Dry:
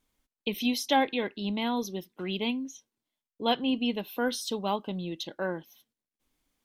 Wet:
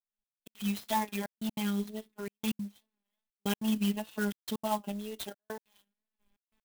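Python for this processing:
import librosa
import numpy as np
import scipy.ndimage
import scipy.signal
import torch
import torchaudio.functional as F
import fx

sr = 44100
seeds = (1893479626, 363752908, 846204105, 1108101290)

y = fx.fade_in_head(x, sr, length_s=1.68)
y = fx.recorder_agc(y, sr, target_db=-20.0, rise_db_per_s=5.9, max_gain_db=30)
y = scipy.signal.sosfilt(scipy.signal.butter(6, 4200.0, 'lowpass', fs=sr, output='sos'), y)
y = y + 0.89 * np.pad(y, (int(3.6 * sr / 1000.0), 0))[:len(y)]
y = fx.robotise(y, sr, hz=210.0)
y = fx.wow_flutter(y, sr, seeds[0], rate_hz=2.1, depth_cents=72.0)
y = fx.step_gate(y, sr, bpm=191, pattern='xxx..x.xxxxxx', floor_db=-60.0, edge_ms=4.5)
y = fx.clock_jitter(y, sr, seeds[1], jitter_ms=0.044)
y = y * librosa.db_to_amplitude(-3.5)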